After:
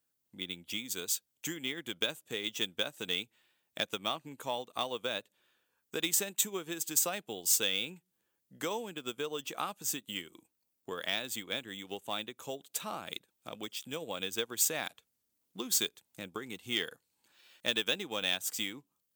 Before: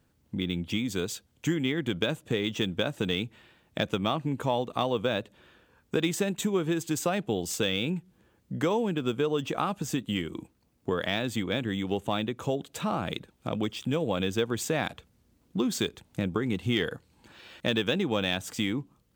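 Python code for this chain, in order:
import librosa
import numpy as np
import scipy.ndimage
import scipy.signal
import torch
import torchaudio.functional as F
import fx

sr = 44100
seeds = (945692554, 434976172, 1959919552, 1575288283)

y = fx.riaa(x, sr, side='recording')
y = fx.upward_expand(y, sr, threshold_db=-48.0, expansion=1.5)
y = y * librosa.db_to_amplitude(-3.5)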